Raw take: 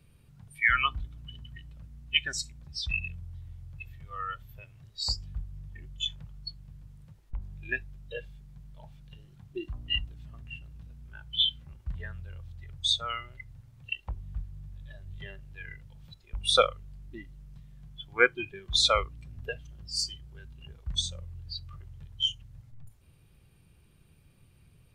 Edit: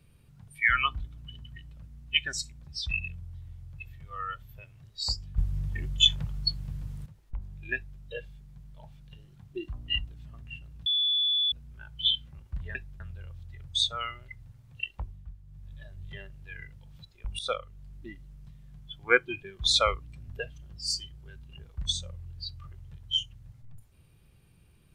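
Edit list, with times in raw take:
0:05.38–0:07.06: clip gain +12 dB
0:07.75–0:08.00: duplicate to 0:12.09
0:10.86: insert tone 3,450 Hz −23 dBFS 0.66 s
0:14.08–0:14.81: duck −8.5 dB, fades 0.26 s
0:16.48–0:17.01: fade in, from −16.5 dB

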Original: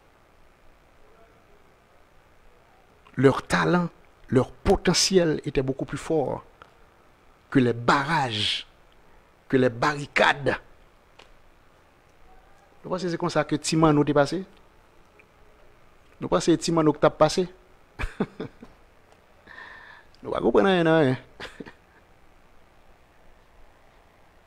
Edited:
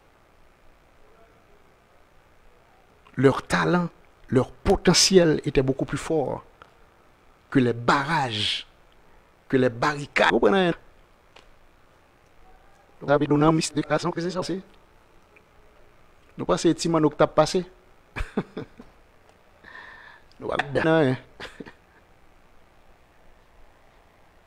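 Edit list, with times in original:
0:04.87–0:06.08: clip gain +3.5 dB
0:10.30–0:10.55: swap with 0:20.42–0:20.84
0:12.91–0:14.25: reverse

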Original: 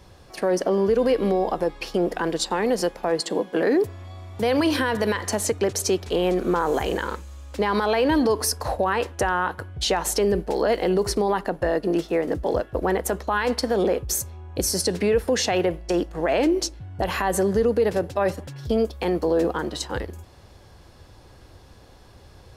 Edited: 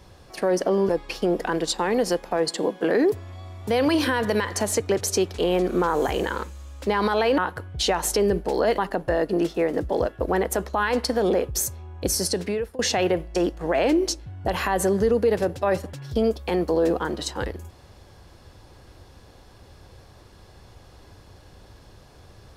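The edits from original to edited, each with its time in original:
0:00.89–0:01.61: remove
0:08.10–0:09.40: remove
0:10.80–0:11.32: remove
0:14.57–0:15.33: fade out equal-power, to −22 dB

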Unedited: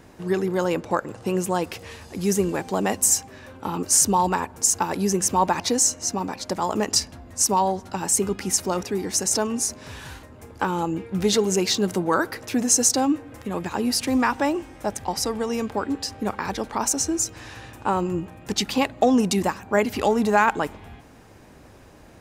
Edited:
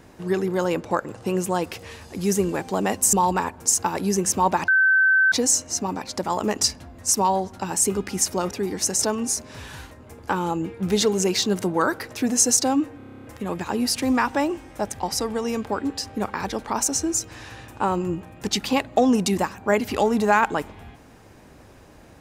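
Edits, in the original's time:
0:03.13–0:04.09: remove
0:05.64: insert tone 1,540 Hz −14 dBFS 0.64 s
0:13.29: stutter 0.03 s, 10 plays

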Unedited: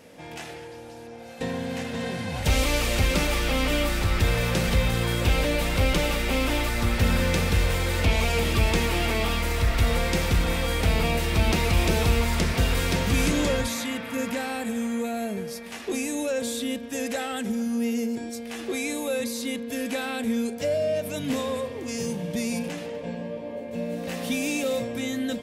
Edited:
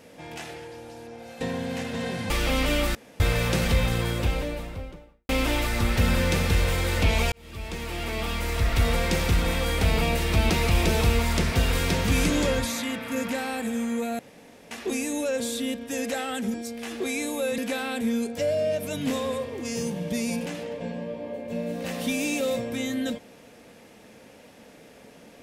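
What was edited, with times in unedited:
0:02.30–0:03.32: remove
0:03.97–0:04.22: fill with room tone
0:04.74–0:06.31: fade out and dull
0:08.34–0:09.83: fade in
0:15.21–0:15.73: fill with room tone
0:17.56–0:18.22: remove
0:19.26–0:19.81: remove

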